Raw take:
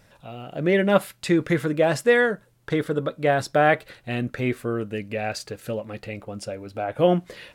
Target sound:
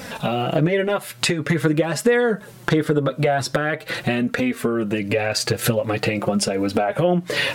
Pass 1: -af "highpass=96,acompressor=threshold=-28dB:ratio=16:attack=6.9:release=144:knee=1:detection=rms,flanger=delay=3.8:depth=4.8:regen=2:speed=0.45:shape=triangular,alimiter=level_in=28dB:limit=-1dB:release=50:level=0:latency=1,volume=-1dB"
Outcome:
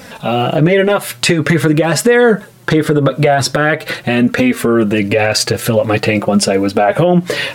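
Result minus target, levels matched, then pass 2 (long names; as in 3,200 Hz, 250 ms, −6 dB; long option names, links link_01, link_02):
downward compressor: peak gain reduction −11 dB
-af "highpass=96,acompressor=threshold=-39.5dB:ratio=16:attack=6.9:release=144:knee=1:detection=rms,flanger=delay=3.8:depth=4.8:regen=2:speed=0.45:shape=triangular,alimiter=level_in=28dB:limit=-1dB:release=50:level=0:latency=1,volume=-1dB"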